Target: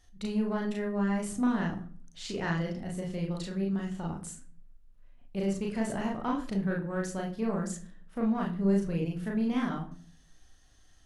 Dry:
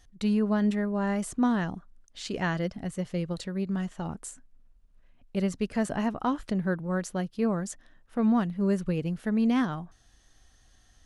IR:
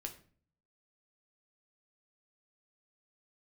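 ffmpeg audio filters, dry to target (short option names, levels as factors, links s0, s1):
-filter_complex "[0:a]asoftclip=type=tanh:threshold=0.112,asplit=2[s0][s1];[1:a]atrim=start_sample=2205,adelay=36[s2];[s1][s2]afir=irnorm=-1:irlink=0,volume=1.5[s3];[s0][s3]amix=inputs=2:normalize=0,volume=0.562"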